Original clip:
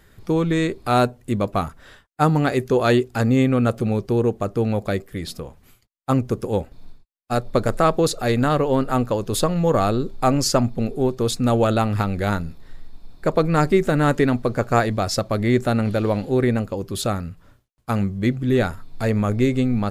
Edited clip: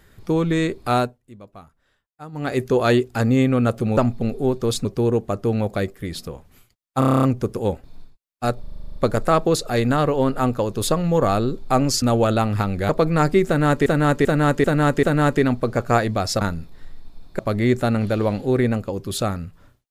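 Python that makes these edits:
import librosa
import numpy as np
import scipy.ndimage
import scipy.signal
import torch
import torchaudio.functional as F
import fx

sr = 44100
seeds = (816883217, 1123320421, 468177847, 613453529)

y = fx.edit(x, sr, fx.fade_down_up(start_s=0.91, length_s=1.69, db=-20.5, fade_s=0.28),
    fx.stutter(start_s=6.11, slice_s=0.03, count=9),
    fx.stutter(start_s=7.48, slice_s=0.04, count=10),
    fx.move(start_s=10.54, length_s=0.88, to_s=3.97),
    fx.move(start_s=12.29, length_s=0.98, to_s=15.23),
    fx.repeat(start_s=13.85, length_s=0.39, count=5), tone=tone)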